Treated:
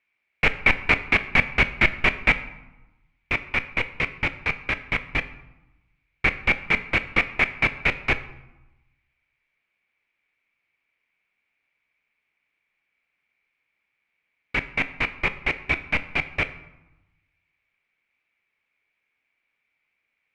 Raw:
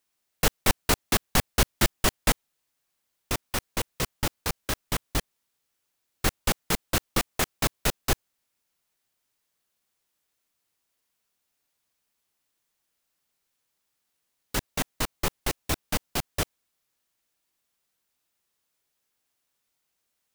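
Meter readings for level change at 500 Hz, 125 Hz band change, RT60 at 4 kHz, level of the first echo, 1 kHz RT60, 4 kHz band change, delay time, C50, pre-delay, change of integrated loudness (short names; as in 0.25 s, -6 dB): 0.0 dB, -0.5 dB, 0.60 s, none, 1.0 s, -2.0 dB, none, 14.5 dB, 8 ms, +5.0 dB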